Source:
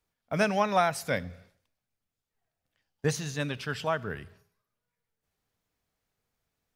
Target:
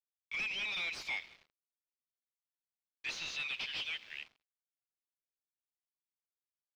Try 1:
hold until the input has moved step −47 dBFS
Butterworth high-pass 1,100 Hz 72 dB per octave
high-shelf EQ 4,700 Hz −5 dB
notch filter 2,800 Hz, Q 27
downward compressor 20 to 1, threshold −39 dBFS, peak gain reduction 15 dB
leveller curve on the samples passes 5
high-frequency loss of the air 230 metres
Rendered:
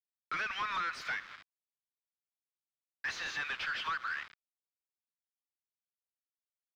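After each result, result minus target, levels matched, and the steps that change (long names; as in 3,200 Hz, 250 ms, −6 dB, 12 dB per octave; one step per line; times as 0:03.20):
1,000 Hz band +14.5 dB; hold until the input has moved: distortion +7 dB
change: Butterworth high-pass 2,200 Hz 72 dB per octave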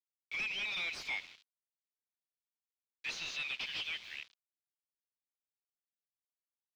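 hold until the input has moved: distortion +7 dB
change: hold until the input has moved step −55 dBFS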